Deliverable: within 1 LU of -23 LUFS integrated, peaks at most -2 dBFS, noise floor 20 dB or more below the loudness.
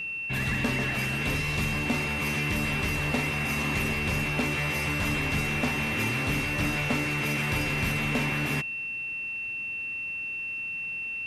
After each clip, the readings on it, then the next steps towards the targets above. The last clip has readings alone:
steady tone 2.7 kHz; tone level -31 dBFS; loudness -27.5 LUFS; peak level -17.0 dBFS; loudness target -23.0 LUFS
-> band-stop 2.7 kHz, Q 30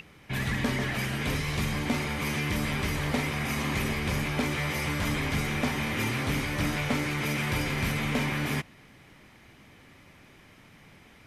steady tone not found; loudness -29.0 LUFS; peak level -18.5 dBFS; loudness target -23.0 LUFS
-> trim +6 dB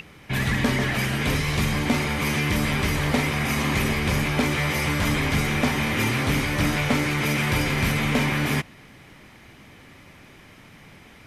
loudness -23.0 LUFS; peak level -12.5 dBFS; noise floor -49 dBFS

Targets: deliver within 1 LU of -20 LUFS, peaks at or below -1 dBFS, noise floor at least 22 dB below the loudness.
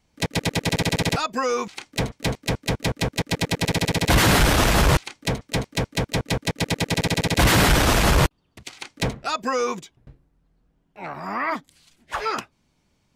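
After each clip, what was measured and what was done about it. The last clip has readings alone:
loudness -22.5 LUFS; peak level -9.5 dBFS; loudness target -20.0 LUFS
-> trim +2.5 dB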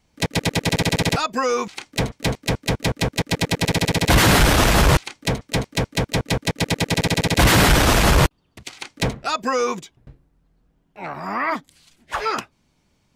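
loudness -20.0 LUFS; peak level -7.0 dBFS; noise floor -66 dBFS

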